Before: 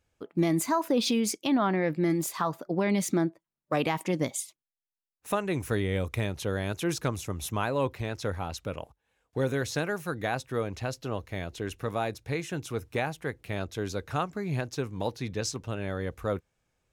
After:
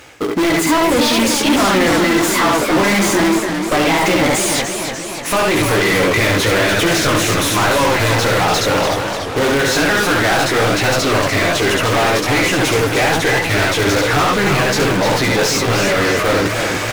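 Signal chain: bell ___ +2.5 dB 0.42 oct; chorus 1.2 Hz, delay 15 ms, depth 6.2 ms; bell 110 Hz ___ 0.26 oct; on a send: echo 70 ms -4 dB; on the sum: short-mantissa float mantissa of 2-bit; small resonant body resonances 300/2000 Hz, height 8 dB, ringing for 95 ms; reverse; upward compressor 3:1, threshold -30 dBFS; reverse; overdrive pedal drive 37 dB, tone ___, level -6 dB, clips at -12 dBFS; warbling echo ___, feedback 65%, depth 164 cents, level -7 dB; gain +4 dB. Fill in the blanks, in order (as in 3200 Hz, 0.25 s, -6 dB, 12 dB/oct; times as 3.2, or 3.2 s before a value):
2000 Hz, +9.5 dB, 4800 Hz, 0.298 s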